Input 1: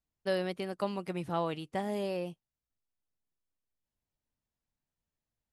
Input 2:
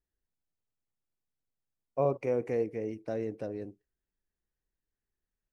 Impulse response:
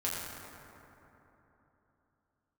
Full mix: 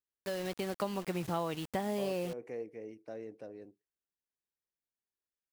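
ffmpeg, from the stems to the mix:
-filter_complex "[0:a]dynaudnorm=framelen=100:gausssize=11:maxgain=13dB,acrusher=bits=5:mix=0:aa=0.000001,volume=-5.5dB[link_01];[1:a]highpass=frequency=280:poles=1,volume=-8dB[link_02];[link_01][link_02]amix=inputs=2:normalize=0,acompressor=threshold=-35dB:ratio=2.5"

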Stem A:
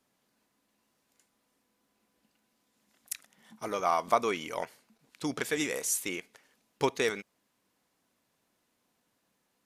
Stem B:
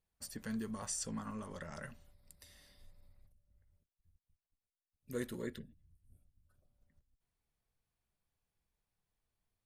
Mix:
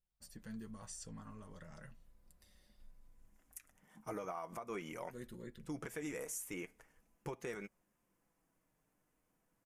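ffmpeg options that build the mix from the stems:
ffmpeg -i stem1.wav -i stem2.wav -filter_complex "[0:a]equalizer=frequency=4000:width_type=o:width=0.79:gain=-15,acompressor=threshold=-29dB:ratio=6,adelay=450,volume=-1dB[link_01];[1:a]volume=-6dB,asplit=2[link_02][link_03];[link_03]apad=whole_len=445551[link_04];[link_01][link_04]sidechaincompress=threshold=-52dB:ratio=8:attack=11:release=522[link_05];[link_05][link_02]amix=inputs=2:normalize=0,lowshelf=frequency=120:gain=10,flanger=delay=5.4:depth=1.3:regen=-40:speed=0.39:shape=triangular,alimiter=level_in=8.5dB:limit=-24dB:level=0:latency=1:release=208,volume=-8.5dB" out.wav

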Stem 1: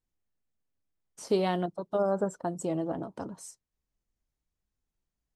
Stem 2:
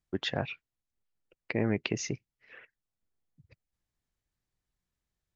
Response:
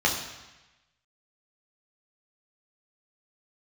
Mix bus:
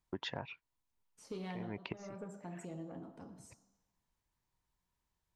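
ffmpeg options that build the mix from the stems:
-filter_complex "[0:a]asoftclip=type=tanh:threshold=-18.5dB,volume=-14dB,asplit=3[link_01][link_02][link_03];[link_02]volume=-17dB[link_04];[1:a]equalizer=frequency=960:width=4.9:gain=13.5,volume=0dB[link_05];[link_03]apad=whole_len=236197[link_06];[link_05][link_06]sidechaincompress=threshold=-59dB:ratio=8:attack=7.5:release=119[link_07];[2:a]atrim=start_sample=2205[link_08];[link_04][link_08]afir=irnorm=-1:irlink=0[link_09];[link_01][link_07][link_09]amix=inputs=3:normalize=0,acompressor=threshold=-38dB:ratio=6"

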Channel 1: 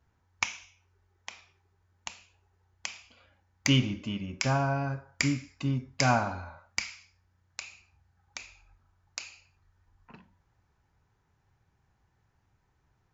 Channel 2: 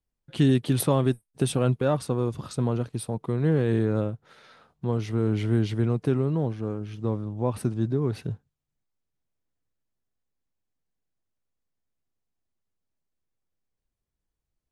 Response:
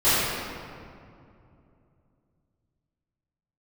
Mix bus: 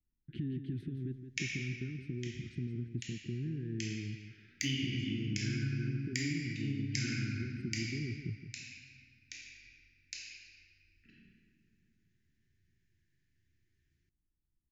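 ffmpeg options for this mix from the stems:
-filter_complex "[0:a]lowshelf=frequency=260:gain=-8.5,adelay=950,volume=-8.5dB,asplit=2[link_01][link_02];[link_02]volume=-14.5dB[link_03];[1:a]lowpass=1300,alimiter=limit=-18dB:level=0:latency=1,acompressor=threshold=-37dB:ratio=3,volume=-0.5dB,asplit=2[link_04][link_05];[link_05]volume=-10dB[link_06];[2:a]atrim=start_sample=2205[link_07];[link_03][link_07]afir=irnorm=-1:irlink=0[link_08];[link_06]aecho=0:1:170|340|510|680:1|0.25|0.0625|0.0156[link_09];[link_01][link_04][link_08][link_09]amix=inputs=4:normalize=0,asuperstop=centerf=790:order=12:qfactor=0.6,acompressor=threshold=-31dB:ratio=4"

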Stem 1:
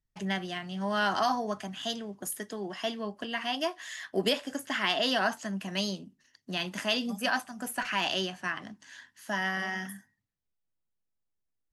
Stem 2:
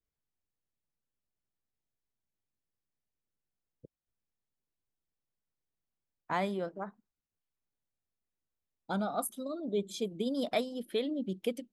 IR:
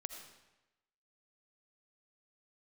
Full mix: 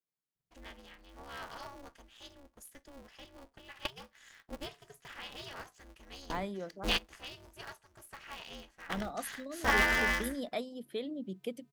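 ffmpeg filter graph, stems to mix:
-filter_complex "[0:a]aecho=1:1:2.2:0.67,aeval=exprs='val(0)*sgn(sin(2*PI*140*n/s))':channel_layout=same,adelay=350,volume=2dB[link_01];[1:a]highpass=frequency=140:width=0.5412,highpass=frequency=140:width=1.3066,volume=-6dB,asplit=2[link_02][link_03];[link_03]apad=whole_len=532538[link_04];[link_01][link_04]sidechaingate=range=-21dB:threshold=-56dB:ratio=16:detection=peak[link_05];[link_05][link_02]amix=inputs=2:normalize=0,lowshelf=frequency=80:gain=9"

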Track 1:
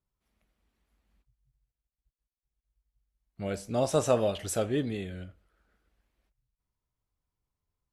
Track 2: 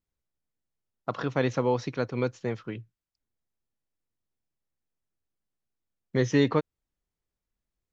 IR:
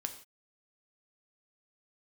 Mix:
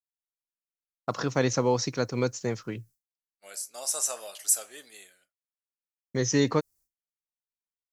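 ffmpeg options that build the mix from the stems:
-filter_complex "[0:a]highpass=1000,volume=-5dB,asplit=2[link_01][link_02];[1:a]volume=1dB[link_03];[link_02]apad=whole_len=349700[link_04];[link_03][link_04]sidechaincompress=threshold=-55dB:ratio=4:attack=7.4:release=1500[link_05];[link_01][link_05]amix=inputs=2:normalize=0,agate=range=-33dB:threshold=-51dB:ratio=3:detection=peak,aexciter=amount=8.4:drive=2.6:freq=4800"

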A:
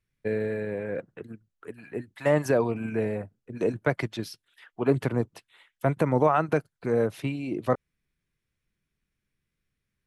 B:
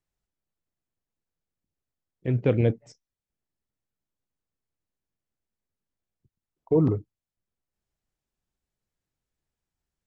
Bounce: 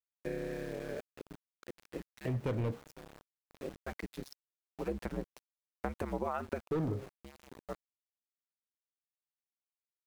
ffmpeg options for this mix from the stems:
ffmpeg -i stem1.wav -i stem2.wav -filter_complex "[0:a]aeval=exprs='val(0)*sin(2*PI*70*n/s)':channel_layout=same,volume=-5dB[link_01];[1:a]volume=19.5dB,asoftclip=hard,volume=-19.5dB,bandreject=frequency=67.67:width_type=h:width=4,bandreject=frequency=135.34:width_type=h:width=4,bandreject=frequency=203.01:width_type=h:width=4,bandreject=frequency=270.68:width_type=h:width=4,bandreject=frequency=338.35:width_type=h:width=4,bandreject=frequency=406.02:width_type=h:width=4,bandreject=frequency=473.69:width_type=h:width=4,bandreject=frequency=541.36:width_type=h:width=4,bandreject=frequency=609.03:width_type=h:width=4,bandreject=frequency=676.7:width_type=h:width=4,bandreject=frequency=744.37:width_type=h:width=4,bandreject=frequency=812.04:width_type=h:width=4,bandreject=frequency=879.71:width_type=h:width=4,bandreject=frequency=947.38:width_type=h:width=4,bandreject=frequency=1015.05:width_type=h:width=4,bandreject=frequency=1082.72:width_type=h:width=4,bandreject=frequency=1150.39:width_type=h:width=4,bandreject=frequency=1218.06:width_type=h:width=4,bandreject=frequency=1285.73:width_type=h:width=4,bandreject=frequency=1353.4:width_type=h:width=4,bandreject=frequency=1421.07:width_type=h:width=4,bandreject=frequency=1488.74:width_type=h:width=4,bandreject=frequency=1556.41:width_type=h:width=4,bandreject=frequency=1624.08:width_type=h:width=4,bandreject=frequency=1691.75:width_type=h:width=4,bandreject=frequency=1759.42:width_type=h:width=4,bandreject=frequency=1827.09:width_type=h:width=4,bandreject=frequency=1894.76:width_type=h:width=4,bandreject=frequency=1962.43:width_type=h:width=4,bandreject=frequency=2030.1:width_type=h:width=4,bandreject=frequency=2097.77:width_type=h:width=4,volume=-3dB,asplit=2[link_02][link_03];[link_03]apad=whole_len=443967[link_04];[link_01][link_04]sidechaincompress=threshold=-44dB:ratio=6:attack=7.1:release=1310[link_05];[link_05][link_02]amix=inputs=2:normalize=0,aeval=exprs='val(0)*gte(abs(val(0)),0.00531)':channel_layout=same,acompressor=threshold=-34dB:ratio=2.5" out.wav

